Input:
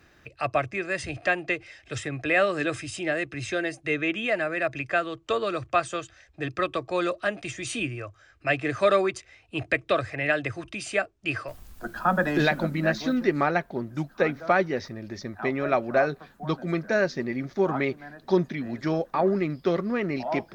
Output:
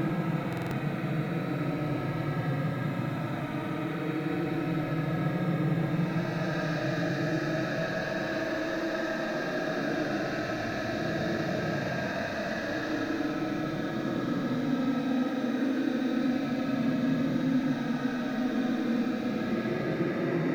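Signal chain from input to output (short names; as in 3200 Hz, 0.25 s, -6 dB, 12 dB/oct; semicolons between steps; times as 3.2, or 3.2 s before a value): stepped spectrum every 0.2 s; swelling echo 85 ms, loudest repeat 5, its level -14.5 dB; Paulstretch 34×, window 0.05 s, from 12.64; stuck buffer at 0.48, samples 2048, times 4; gain -3.5 dB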